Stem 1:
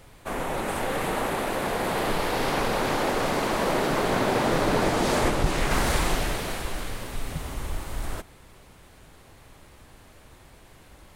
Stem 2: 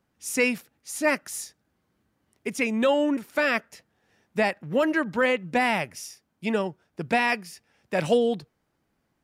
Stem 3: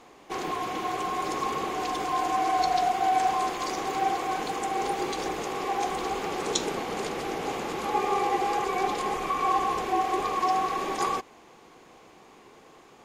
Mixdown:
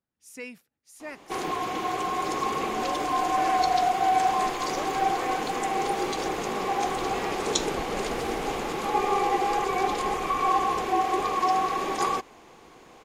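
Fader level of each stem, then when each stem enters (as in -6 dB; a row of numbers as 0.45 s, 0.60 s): -16.5 dB, -16.5 dB, +1.5 dB; 2.35 s, 0.00 s, 1.00 s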